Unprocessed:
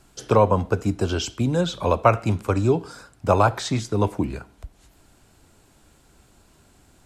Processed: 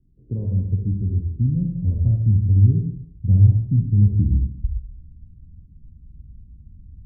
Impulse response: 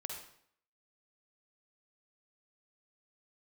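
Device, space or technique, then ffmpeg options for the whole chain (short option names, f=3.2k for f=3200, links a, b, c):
next room: -filter_complex "[0:a]asubboost=boost=10.5:cutoff=140,lowpass=f=260:w=0.5412,lowpass=f=260:w=1.3066[a];[1:a]atrim=start_sample=2205[b];[a][b]afir=irnorm=-1:irlink=0"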